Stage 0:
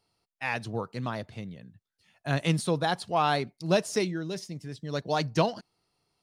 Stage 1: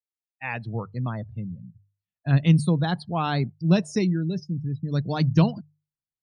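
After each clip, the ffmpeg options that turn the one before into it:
-af "afftdn=nr=35:nf=-38,bandreject=f=50:t=h:w=6,bandreject=f=100:t=h:w=6,bandreject=f=150:t=h:w=6,asubboost=boost=7.5:cutoff=210"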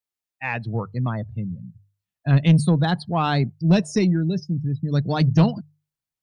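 -af "asoftclip=type=tanh:threshold=0.237,volume=1.68"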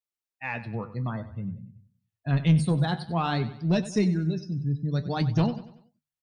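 -af "flanger=delay=8.2:depth=6:regen=58:speed=0.54:shape=sinusoidal,aecho=1:1:95|190|285|380:0.178|0.0782|0.0344|0.0151,volume=0.841"

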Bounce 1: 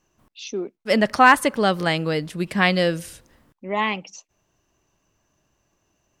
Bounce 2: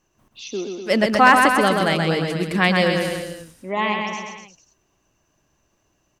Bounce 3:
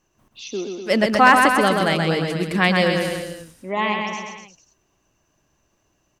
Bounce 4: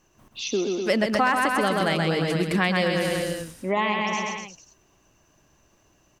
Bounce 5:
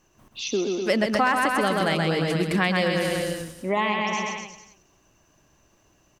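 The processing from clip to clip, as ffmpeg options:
-af "aecho=1:1:130|247|352.3|447.1|532.4:0.631|0.398|0.251|0.158|0.1"
-af anull
-af "acompressor=threshold=0.0501:ratio=4,volume=1.78"
-af "aecho=1:1:273:0.106"

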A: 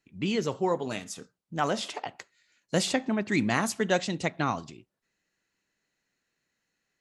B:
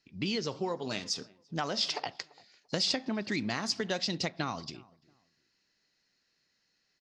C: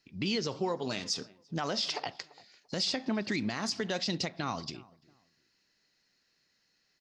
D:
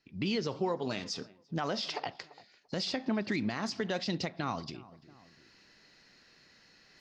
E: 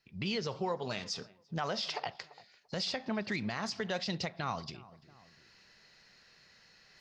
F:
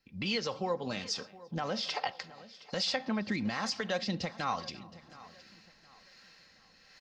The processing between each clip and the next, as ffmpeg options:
-filter_complex "[0:a]acompressor=threshold=0.0316:ratio=6,lowpass=f=5000:t=q:w=5.4,asplit=2[s0][s1];[s1]adelay=341,lowpass=f=1300:p=1,volume=0.075,asplit=2[s2][s3];[s3]adelay=341,lowpass=f=1300:p=1,volume=0.28[s4];[s0][s2][s4]amix=inputs=3:normalize=0"
-af "alimiter=limit=0.0668:level=0:latency=1:release=47,volume=1.26"
-af "aemphasis=mode=reproduction:type=50fm,areverse,acompressor=mode=upward:threshold=0.00447:ratio=2.5,areverse"
-af "equalizer=f=290:t=o:w=0.66:g=-10.5"
-filter_complex "[0:a]aecho=1:1:3.8:0.43,acrossover=split=460[s0][s1];[s0]aeval=exprs='val(0)*(1-0.5/2+0.5/2*cos(2*PI*1.2*n/s))':c=same[s2];[s1]aeval=exprs='val(0)*(1-0.5/2-0.5/2*cos(2*PI*1.2*n/s))':c=same[s3];[s2][s3]amix=inputs=2:normalize=0,aecho=1:1:718|1436|2154:0.112|0.0381|0.013,volume=1.5"

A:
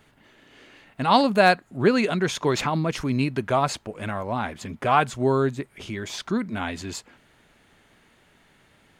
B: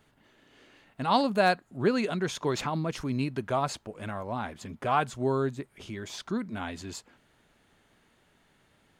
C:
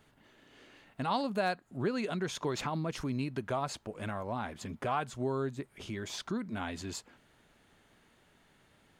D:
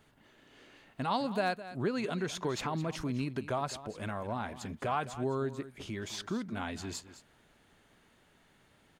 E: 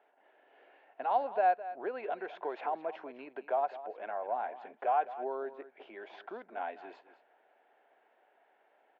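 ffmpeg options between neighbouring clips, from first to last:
-af "equalizer=f=2200:t=o:w=0.77:g=-3,volume=0.501"
-af "acompressor=threshold=0.02:ratio=2"
-af "aecho=1:1:211:0.188"
-af "highpass=f=430:w=0.5412,highpass=f=430:w=1.3066,equalizer=f=730:t=q:w=4:g=9,equalizer=f=1200:t=q:w=4:g=-9,equalizer=f=2000:t=q:w=4:g=-5,lowpass=f=2200:w=0.5412,lowpass=f=2200:w=1.3066"

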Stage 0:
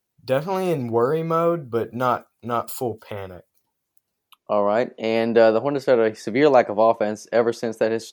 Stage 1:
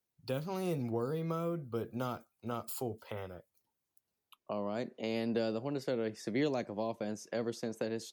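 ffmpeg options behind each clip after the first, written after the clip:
-filter_complex "[0:a]acrossover=split=310|3000[s0][s1][s2];[s1]acompressor=threshold=0.0355:ratio=6[s3];[s0][s3][s2]amix=inputs=3:normalize=0,volume=0.355"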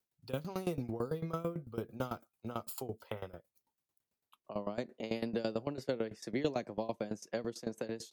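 -af "aeval=exprs='val(0)*pow(10,-18*if(lt(mod(9*n/s,1),2*abs(9)/1000),1-mod(9*n/s,1)/(2*abs(9)/1000),(mod(9*n/s,1)-2*abs(9)/1000)/(1-2*abs(9)/1000))/20)':c=same,volume=1.58"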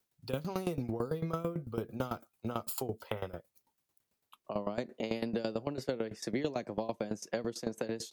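-af "acompressor=threshold=0.0126:ratio=3,volume=2.11"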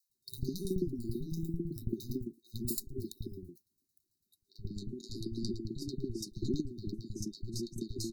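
-filter_complex "[0:a]aeval=exprs='0.141*(cos(1*acos(clip(val(0)/0.141,-1,1)))-cos(1*PI/2))+0.0355*(cos(3*acos(clip(val(0)/0.141,-1,1)))-cos(3*PI/2))+0.02*(cos(4*acos(clip(val(0)/0.141,-1,1)))-cos(4*PI/2))+0.00447*(cos(5*acos(clip(val(0)/0.141,-1,1)))-cos(5*PI/2))':c=same,afftfilt=real='re*(1-between(b*sr/4096,400,3700))':imag='im*(1-between(b*sr/4096,400,3700))':win_size=4096:overlap=0.75,acrossover=split=180|810[s0][s1][s2];[s0]adelay=90[s3];[s1]adelay=150[s4];[s3][s4][s2]amix=inputs=3:normalize=0,volume=2.66"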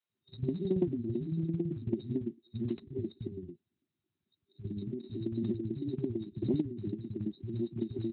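-af "aeval=exprs='0.158*(cos(1*acos(clip(val(0)/0.158,-1,1)))-cos(1*PI/2))+0.0178*(cos(2*acos(clip(val(0)/0.158,-1,1)))-cos(2*PI/2))+0.00708*(cos(5*acos(clip(val(0)/0.158,-1,1)))-cos(5*PI/2))+0.00251*(cos(6*acos(clip(val(0)/0.158,-1,1)))-cos(6*PI/2))+0.001*(cos(8*acos(clip(val(0)/0.158,-1,1)))-cos(8*PI/2))':c=same,volume=1.41" -ar 8000 -c:a libspeex -b:a 15k

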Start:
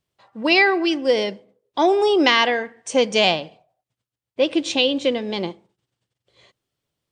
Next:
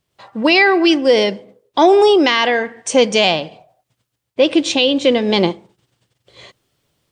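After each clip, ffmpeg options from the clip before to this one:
-filter_complex "[0:a]asplit=2[s0][s1];[s1]alimiter=limit=0.224:level=0:latency=1:release=21,volume=1.41[s2];[s0][s2]amix=inputs=2:normalize=0,dynaudnorm=f=100:g=3:m=2.24,volume=0.891"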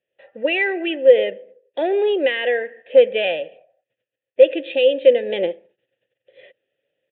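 -filter_complex "[0:a]aresample=8000,volume=1.78,asoftclip=hard,volume=0.562,aresample=44100,asplit=3[s0][s1][s2];[s0]bandpass=f=530:t=q:w=8,volume=1[s3];[s1]bandpass=f=1840:t=q:w=8,volume=0.501[s4];[s2]bandpass=f=2480:t=q:w=8,volume=0.355[s5];[s3][s4][s5]amix=inputs=3:normalize=0,volume=1.68"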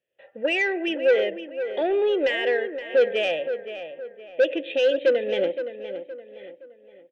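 -filter_complex "[0:a]asoftclip=type=tanh:threshold=0.282,asplit=2[s0][s1];[s1]adelay=518,lowpass=f=2700:p=1,volume=0.316,asplit=2[s2][s3];[s3]adelay=518,lowpass=f=2700:p=1,volume=0.4,asplit=2[s4][s5];[s5]adelay=518,lowpass=f=2700:p=1,volume=0.4,asplit=2[s6][s7];[s7]adelay=518,lowpass=f=2700:p=1,volume=0.4[s8];[s2][s4][s6][s8]amix=inputs=4:normalize=0[s9];[s0][s9]amix=inputs=2:normalize=0,volume=0.75"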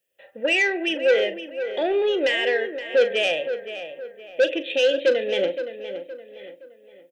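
-filter_complex "[0:a]crystalizer=i=3:c=0,asplit=2[s0][s1];[s1]adelay=40,volume=0.237[s2];[s0][s2]amix=inputs=2:normalize=0"

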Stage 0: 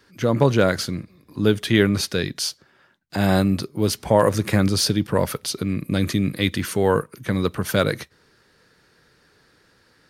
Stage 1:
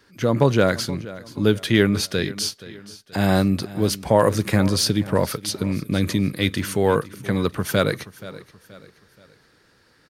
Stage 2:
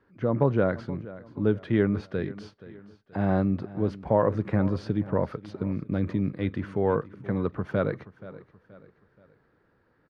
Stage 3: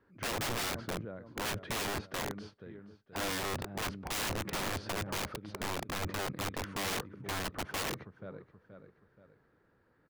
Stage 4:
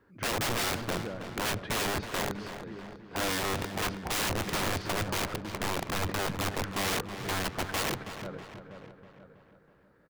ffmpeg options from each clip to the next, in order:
-af "aecho=1:1:477|954|1431:0.133|0.0547|0.0224"
-af "lowpass=1300,volume=0.531"
-af "aeval=exprs='(mod(20*val(0)+1,2)-1)/20':c=same,volume=0.668"
-filter_complex "[0:a]asplit=2[s0][s1];[s1]adelay=323,lowpass=f=4100:p=1,volume=0.316,asplit=2[s2][s3];[s3]adelay=323,lowpass=f=4100:p=1,volume=0.55,asplit=2[s4][s5];[s5]adelay=323,lowpass=f=4100:p=1,volume=0.55,asplit=2[s6][s7];[s7]adelay=323,lowpass=f=4100:p=1,volume=0.55,asplit=2[s8][s9];[s9]adelay=323,lowpass=f=4100:p=1,volume=0.55,asplit=2[s10][s11];[s11]adelay=323,lowpass=f=4100:p=1,volume=0.55[s12];[s0][s2][s4][s6][s8][s10][s12]amix=inputs=7:normalize=0,volume=1.68"

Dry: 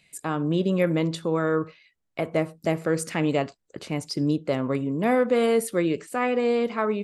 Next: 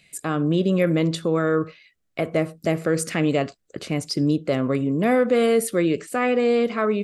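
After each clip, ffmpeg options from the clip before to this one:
-filter_complex "[0:a]equalizer=f=910:t=o:w=0.25:g=-10.5,asplit=2[s0][s1];[s1]alimiter=limit=0.106:level=0:latency=1,volume=0.708[s2];[s0][s2]amix=inputs=2:normalize=0"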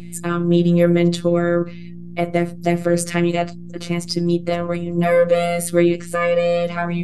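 -af "aeval=exprs='val(0)+0.0251*(sin(2*PI*60*n/s)+sin(2*PI*2*60*n/s)/2+sin(2*PI*3*60*n/s)/3+sin(2*PI*4*60*n/s)/4+sin(2*PI*5*60*n/s)/5)':c=same,afftfilt=real='hypot(re,im)*cos(PI*b)':imag='0':win_size=1024:overlap=0.75,volume=2.11"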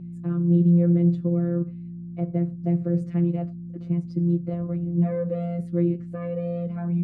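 -af "bandpass=f=150:t=q:w=1.5:csg=0"

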